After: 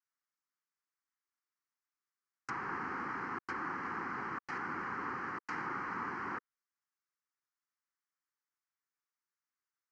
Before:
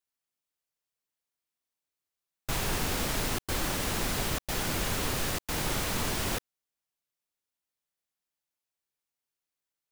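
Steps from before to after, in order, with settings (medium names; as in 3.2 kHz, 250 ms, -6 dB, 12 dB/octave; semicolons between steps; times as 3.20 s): static phaser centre 1.5 kHz, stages 4; low-pass that closes with the level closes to 1.5 kHz, closed at -29 dBFS; cabinet simulation 390–5900 Hz, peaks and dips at 460 Hz -6 dB, 1.2 kHz +3 dB, 2.6 kHz -7 dB; trim +2 dB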